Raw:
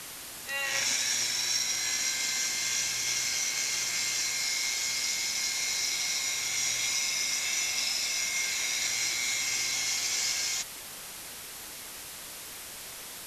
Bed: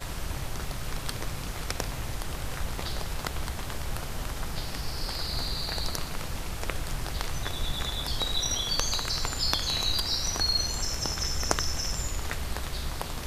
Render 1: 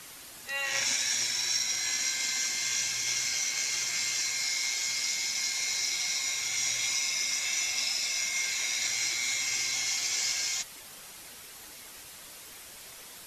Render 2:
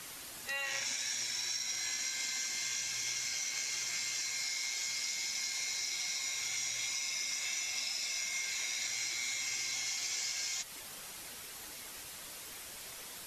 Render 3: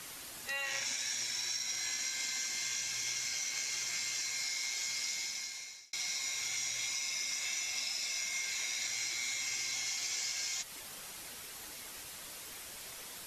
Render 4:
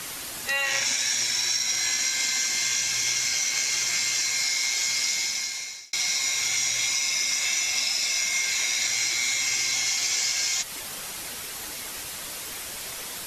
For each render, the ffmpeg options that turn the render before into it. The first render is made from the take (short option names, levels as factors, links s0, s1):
-af "afftdn=nr=6:nf=-43"
-af "acompressor=threshold=0.02:ratio=6"
-filter_complex "[0:a]asplit=2[s0][s1];[s0]atrim=end=5.93,asetpts=PTS-STARTPTS,afade=t=out:st=5.14:d=0.79[s2];[s1]atrim=start=5.93,asetpts=PTS-STARTPTS,afade=t=in:d=0.004:c=hsin[s3];[s2][s3]concat=n=2:v=0:a=1"
-af "volume=3.76"